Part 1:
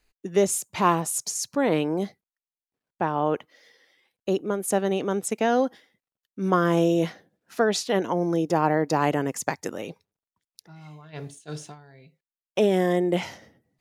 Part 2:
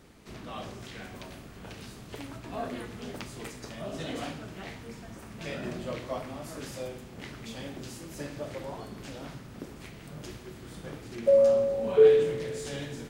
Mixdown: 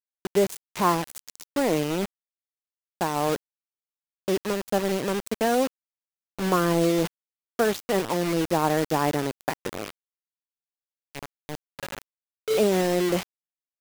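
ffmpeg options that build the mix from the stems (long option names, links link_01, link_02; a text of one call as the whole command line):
ffmpeg -i stem1.wav -i stem2.wav -filter_complex "[0:a]highshelf=frequency=3400:gain=-11,volume=-0.5dB,asplit=2[link_01][link_02];[1:a]lowpass=4400,equalizer=frequency=2100:width=0.54:gain=-7,adelay=500,volume=-4dB[link_03];[link_02]apad=whole_len=599571[link_04];[link_03][link_04]sidechaincompress=threshold=-45dB:ratio=4:attack=25:release=1280[link_05];[link_01][link_05]amix=inputs=2:normalize=0,highpass=frequency=74:poles=1,acrusher=bits=4:mix=0:aa=0.000001" out.wav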